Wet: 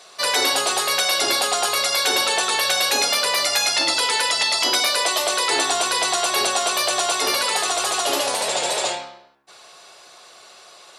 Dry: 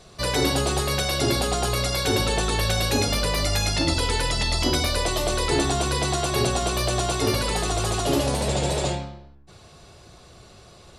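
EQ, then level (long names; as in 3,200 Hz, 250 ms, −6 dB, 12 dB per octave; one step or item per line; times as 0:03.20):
high-pass filter 740 Hz 12 dB per octave
+7.0 dB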